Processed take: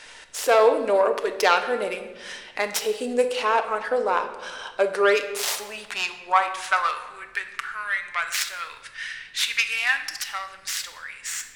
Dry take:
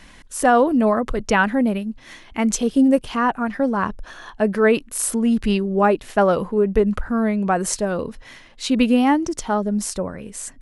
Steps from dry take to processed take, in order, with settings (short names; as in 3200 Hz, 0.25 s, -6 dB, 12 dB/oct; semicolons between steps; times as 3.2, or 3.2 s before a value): tracing distortion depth 0.37 ms; tilt +4.5 dB/oct; in parallel at -1.5 dB: compressor, threshold -23 dBFS, peak gain reduction 17.5 dB; on the sum: high-pass sweep 480 Hz -> 1900 Hz, 4.59–6.66; added noise pink -56 dBFS; air absorption 55 m; shoebox room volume 650 m³, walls mixed, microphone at 0.65 m; speed mistake 48 kHz file played as 44.1 kHz; gain -6.5 dB